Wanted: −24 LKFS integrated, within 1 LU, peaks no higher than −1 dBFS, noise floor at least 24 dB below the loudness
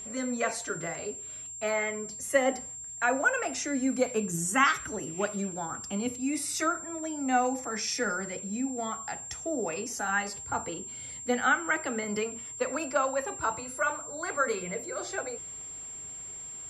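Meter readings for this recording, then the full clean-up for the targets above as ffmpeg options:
interfering tone 7,400 Hz; level of the tone −39 dBFS; integrated loudness −30.5 LKFS; sample peak −11.5 dBFS; target loudness −24.0 LKFS
→ -af "bandreject=frequency=7400:width=30"
-af "volume=6.5dB"

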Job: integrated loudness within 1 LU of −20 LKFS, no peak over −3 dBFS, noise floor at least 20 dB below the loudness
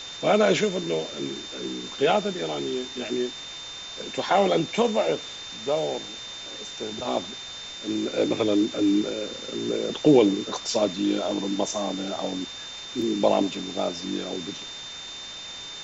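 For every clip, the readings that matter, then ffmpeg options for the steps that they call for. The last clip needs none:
interfering tone 3,600 Hz; level of the tone −37 dBFS; background noise floor −38 dBFS; target noise floor −47 dBFS; integrated loudness −26.5 LKFS; sample peak −6.0 dBFS; target loudness −20.0 LKFS
→ -af "bandreject=frequency=3600:width=30"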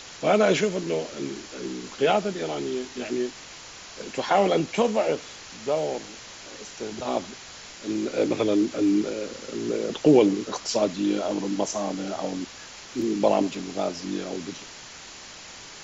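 interfering tone none found; background noise floor −43 dBFS; target noise floor −46 dBFS
→ -af "afftdn=noise_reduction=6:noise_floor=-43"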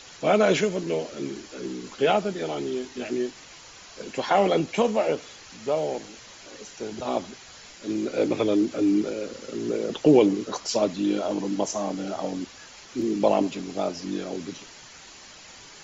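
background noise floor −47 dBFS; integrated loudness −26.0 LKFS; sample peak −6.0 dBFS; target loudness −20.0 LKFS
→ -af "volume=6dB,alimiter=limit=-3dB:level=0:latency=1"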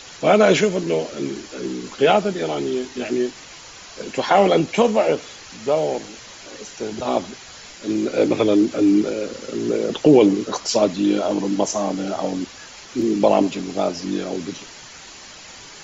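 integrated loudness −20.0 LKFS; sample peak −3.0 dBFS; background noise floor −41 dBFS

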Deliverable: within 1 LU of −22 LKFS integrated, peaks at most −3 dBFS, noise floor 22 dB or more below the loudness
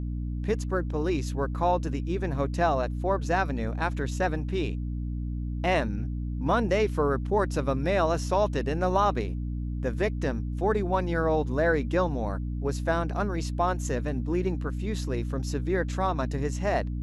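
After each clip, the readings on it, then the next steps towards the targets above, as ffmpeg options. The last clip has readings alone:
mains hum 60 Hz; hum harmonics up to 300 Hz; level of the hum −29 dBFS; integrated loudness −28.0 LKFS; sample peak −11.5 dBFS; target loudness −22.0 LKFS
→ -af "bandreject=frequency=60:width_type=h:width=6,bandreject=frequency=120:width_type=h:width=6,bandreject=frequency=180:width_type=h:width=6,bandreject=frequency=240:width_type=h:width=6,bandreject=frequency=300:width_type=h:width=6"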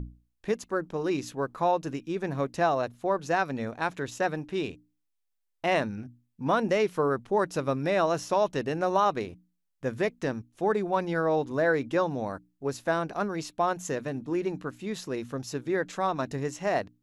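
mains hum none found; integrated loudness −29.0 LKFS; sample peak −12.0 dBFS; target loudness −22.0 LKFS
→ -af "volume=7dB"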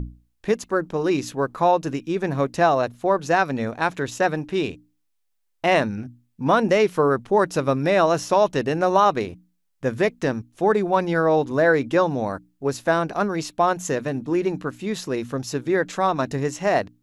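integrated loudness −22.0 LKFS; sample peak −5.0 dBFS; background noise floor −71 dBFS

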